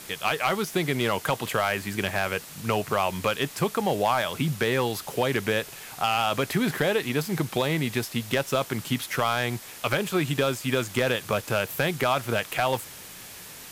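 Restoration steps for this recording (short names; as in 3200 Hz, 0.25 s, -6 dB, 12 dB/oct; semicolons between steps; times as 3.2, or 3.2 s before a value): clip repair -14 dBFS; denoiser 29 dB, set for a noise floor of -43 dBFS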